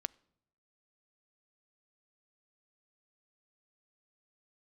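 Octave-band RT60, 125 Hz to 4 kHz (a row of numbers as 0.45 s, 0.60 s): 1.0 s, 0.85 s, 0.85 s, 0.75 s, 0.60 s, 0.55 s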